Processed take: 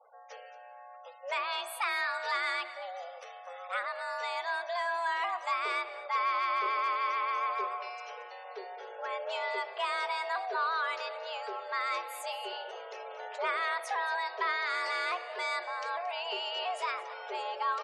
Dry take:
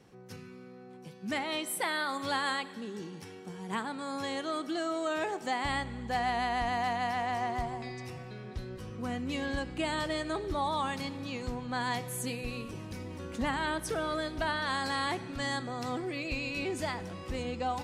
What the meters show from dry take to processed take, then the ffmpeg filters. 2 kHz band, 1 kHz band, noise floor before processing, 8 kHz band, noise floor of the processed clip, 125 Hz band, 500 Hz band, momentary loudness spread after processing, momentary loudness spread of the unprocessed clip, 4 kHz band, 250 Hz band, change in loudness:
+2.5 dB, +2.0 dB, −49 dBFS, −8.5 dB, −50 dBFS, below −40 dB, −2.0 dB, 14 LU, 12 LU, −0.5 dB, below −20 dB, +0.5 dB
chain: -filter_complex "[0:a]bandreject=frequency=62.05:width_type=h:width=4,bandreject=frequency=124.1:width_type=h:width=4,bandreject=frequency=186.15:width_type=h:width=4,bandreject=frequency=248.2:width_type=h:width=4,bandreject=frequency=310.25:width_type=h:width=4,asplit=2[link_01][link_02];[link_02]highpass=frequency=720:poles=1,volume=9dB,asoftclip=type=tanh:threshold=-18.5dB[link_03];[link_01][link_03]amix=inputs=2:normalize=0,lowpass=frequency=1900:poles=1,volume=-6dB,afreqshift=350,afftfilt=real='re*gte(hypot(re,im),0.002)':imag='im*gte(hypot(re,im),0.002)':win_size=1024:overlap=0.75,adynamicequalizer=threshold=0.00355:dfrequency=1400:dqfactor=7.2:tfrequency=1400:tqfactor=7.2:attack=5:release=100:ratio=0.375:range=3:mode=cutabove:tftype=bell,asplit=2[link_04][link_05];[link_05]aecho=0:1:226:0.15[link_06];[link_04][link_06]amix=inputs=2:normalize=0"

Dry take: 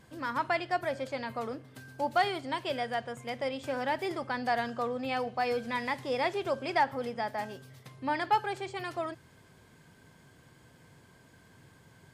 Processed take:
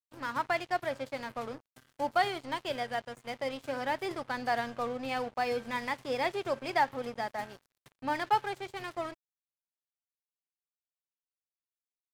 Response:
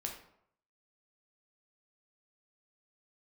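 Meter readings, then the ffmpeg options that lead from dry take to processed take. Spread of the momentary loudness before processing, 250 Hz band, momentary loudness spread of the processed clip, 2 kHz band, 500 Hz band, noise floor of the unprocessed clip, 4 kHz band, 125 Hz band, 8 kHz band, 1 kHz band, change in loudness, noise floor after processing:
10 LU, −2.5 dB, 10 LU, −1.0 dB, −1.5 dB, −59 dBFS, −1.0 dB, −3.5 dB, +1.0 dB, −1.0 dB, −1.0 dB, below −85 dBFS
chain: -af "aeval=exprs='sgn(val(0))*max(abs(val(0))-0.00562,0)':channel_layout=same"

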